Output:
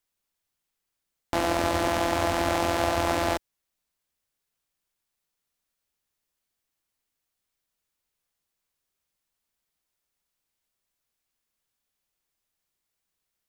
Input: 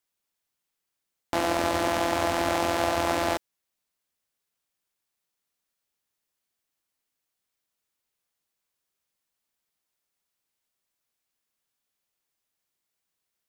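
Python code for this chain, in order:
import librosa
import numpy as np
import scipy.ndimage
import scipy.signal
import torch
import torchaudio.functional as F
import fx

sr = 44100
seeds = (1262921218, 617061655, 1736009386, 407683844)

y = fx.low_shelf(x, sr, hz=74.0, db=11.0)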